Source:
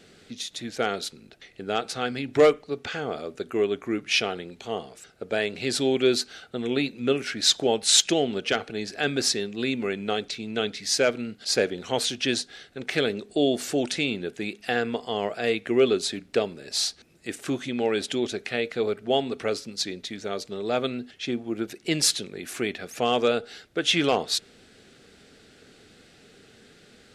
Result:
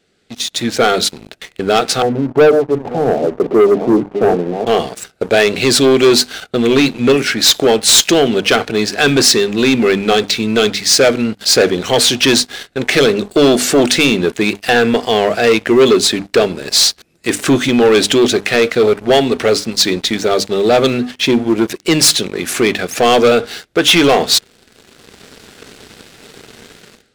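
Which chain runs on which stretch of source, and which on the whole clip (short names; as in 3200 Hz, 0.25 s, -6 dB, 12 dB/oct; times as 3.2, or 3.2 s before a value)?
2.02–4.67 reverse delay 0.482 s, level -11 dB + Chebyshev band-pass 120–900 Hz, order 4
whole clip: notches 50/100/150/200/250/300 Hz; AGC gain up to 12 dB; sample leveller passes 3; gain -2 dB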